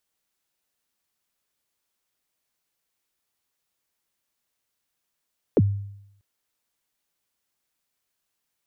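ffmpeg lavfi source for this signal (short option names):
-f lavfi -i "aevalsrc='0.251*pow(10,-3*t/0.78)*sin(2*PI*(550*0.039/log(100/550)*(exp(log(100/550)*min(t,0.039)/0.039)-1)+100*max(t-0.039,0)))':d=0.64:s=44100"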